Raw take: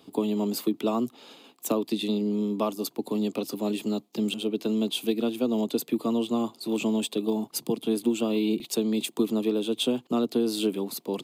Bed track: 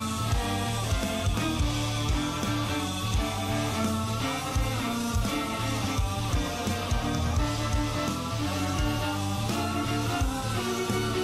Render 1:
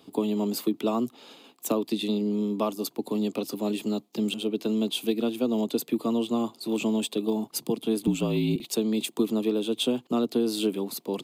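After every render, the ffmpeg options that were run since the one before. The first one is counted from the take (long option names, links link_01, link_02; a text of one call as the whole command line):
ffmpeg -i in.wav -filter_complex "[0:a]asettb=1/sr,asplit=3[link_01][link_02][link_03];[link_01]atrim=end=8.074[link_04];[link_02]atrim=start=8.07:end=8.56,asetpts=PTS-STARTPTS,afade=type=in:duration=0.004:curve=qsin,afade=type=out:start_time=0.486:duration=0.004:curve=qsin,afreqshift=-51[link_05];[link_03]atrim=start=8.556[link_06];[link_04][link_05]acrossfade=duration=0.004:curve1=hsin:curve2=qsin[link_07];[link_07][link_06]acrossfade=duration=0.004:curve1=qsin:curve2=hsin" out.wav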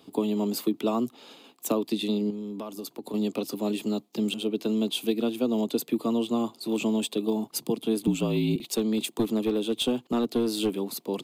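ffmpeg -i in.wav -filter_complex "[0:a]asettb=1/sr,asplit=3[link_01][link_02][link_03];[link_01]atrim=end=2.304[link_04];[link_02]atrim=start=2.3:end=3.14,asetpts=PTS-STARTPTS,afade=type=in:duration=0.004:curve=qsin,afade=type=out:start_time=0.836:duration=0.004:curve=qsin,acompressor=threshold=-32dB:ratio=6:attack=3.2:release=140:knee=1:detection=peak[link_05];[link_03]atrim=start=3.136[link_06];[link_04][link_05]acrossfade=duration=0.004:curve1=hsin:curve2=qsin[link_07];[link_07][link_06]acrossfade=duration=0.004:curve1=qsin:curve2=hsin,asettb=1/sr,asplit=3[link_08][link_09][link_10];[link_08]atrim=end=8.614[link_11];[link_09]atrim=start=8.61:end=10.82,asetpts=PTS-STARTPTS,afade=type=in:duration=0.004:curve=qsin,afade=type=out:start_time=2.206:duration=0.004:curve=qsin,aeval=exprs='clip(val(0),-1,0.0891)':channel_layout=same[link_12];[link_10]atrim=start=10.816[link_13];[link_11][link_12]acrossfade=duration=0.004:curve1=hsin:curve2=qsin[link_14];[link_14][link_13]acrossfade=duration=0.004:curve1=qsin:curve2=hsin" out.wav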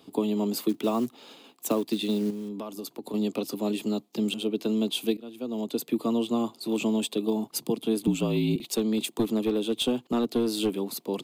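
ffmpeg -i in.wav -filter_complex "[0:a]asettb=1/sr,asplit=3[link_01][link_02][link_03];[link_01]atrim=end=0.694[link_04];[link_02]atrim=start=0.69:end=2.49,asetpts=PTS-STARTPTS,afade=type=in:duration=0.004:curve=qsin,afade=type=out:start_time=1.796:duration=0.004:curve=qsin,acrusher=bits=6:mode=log:mix=0:aa=0.000001[link_05];[link_03]atrim=start=2.486[link_06];[link_04][link_05]acrossfade=duration=0.004:curve1=hsin:curve2=qsin[link_07];[link_07][link_06]acrossfade=duration=0.004:curve1=qsin:curve2=hsin,asplit=2[link_08][link_09];[link_08]atrim=end=5.17,asetpts=PTS-STARTPTS,afade=type=out:start_time=5.166:duration=0.004:curve=hsin:silence=0.0794328[link_10];[link_09]atrim=start=5.17,asetpts=PTS-STARTPTS,afade=type=in:duration=0.79:silence=0.0794328[link_11];[link_10][link_11]concat=n=2:v=0:a=1" out.wav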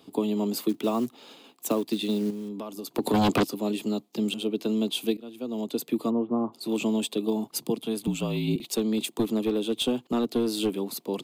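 ffmpeg -i in.wav -filter_complex "[0:a]asplit=3[link_01][link_02][link_03];[link_01]afade=type=out:start_time=2.94:duration=0.02[link_04];[link_02]aeval=exprs='0.133*sin(PI/2*2.82*val(0)/0.133)':channel_layout=same,afade=type=in:start_time=2.94:duration=0.02,afade=type=out:start_time=3.43:duration=0.02[link_05];[link_03]afade=type=in:start_time=3.43:duration=0.02[link_06];[link_04][link_05][link_06]amix=inputs=3:normalize=0,asplit=3[link_07][link_08][link_09];[link_07]afade=type=out:start_time=6.09:duration=0.02[link_10];[link_08]lowpass=frequency=1400:width=0.5412,lowpass=frequency=1400:width=1.3066,afade=type=in:start_time=6.09:duration=0.02,afade=type=out:start_time=6.52:duration=0.02[link_11];[link_09]afade=type=in:start_time=6.52:duration=0.02[link_12];[link_10][link_11][link_12]amix=inputs=3:normalize=0,asettb=1/sr,asplit=3[link_13][link_14][link_15];[link_13]atrim=end=7.814[link_16];[link_14]atrim=start=7.81:end=8.48,asetpts=PTS-STARTPTS,afade=type=in:duration=0.004:curve=qsin,afade=type=out:start_time=0.666:duration=0.004:curve=qsin,equalizer=frequency=320:width=1.5:gain=-6.5[link_17];[link_15]atrim=start=8.476[link_18];[link_16][link_17]acrossfade=duration=0.004:curve1=hsin:curve2=qsin[link_19];[link_19][link_18]acrossfade=duration=0.004:curve1=qsin:curve2=hsin" out.wav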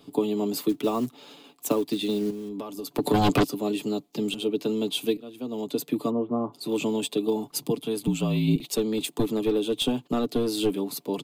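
ffmpeg -i in.wav -af "lowshelf=frequency=100:gain=9.5,aecho=1:1:6.9:0.47" out.wav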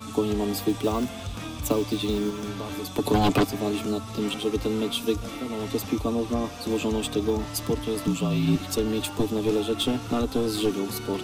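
ffmpeg -i in.wav -i bed.wav -filter_complex "[1:a]volume=-7.5dB[link_01];[0:a][link_01]amix=inputs=2:normalize=0" out.wav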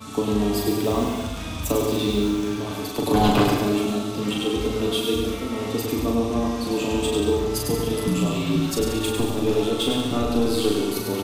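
ffmpeg -i in.wav -filter_complex "[0:a]asplit=2[link_01][link_02];[link_02]adelay=39,volume=-3.5dB[link_03];[link_01][link_03]amix=inputs=2:normalize=0,asplit=2[link_04][link_05];[link_05]aecho=0:1:100|180|244|295.2|336.2:0.631|0.398|0.251|0.158|0.1[link_06];[link_04][link_06]amix=inputs=2:normalize=0" out.wav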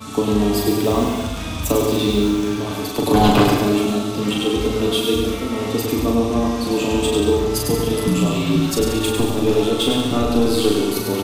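ffmpeg -i in.wav -af "volume=4.5dB" out.wav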